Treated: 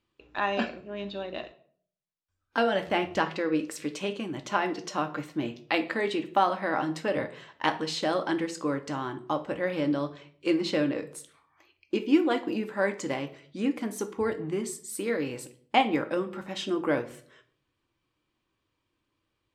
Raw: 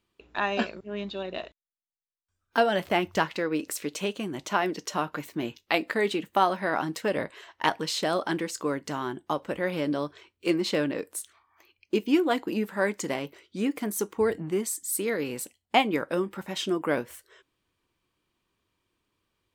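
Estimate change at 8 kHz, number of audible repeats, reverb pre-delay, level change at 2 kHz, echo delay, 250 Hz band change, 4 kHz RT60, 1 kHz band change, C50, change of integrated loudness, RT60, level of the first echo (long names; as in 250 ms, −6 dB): −6.5 dB, no echo audible, 4 ms, −1.5 dB, no echo audible, +0.5 dB, 0.40 s, −0.5 dB, 14.5 dB, −1.0 dB, 0.55 s, no echo audible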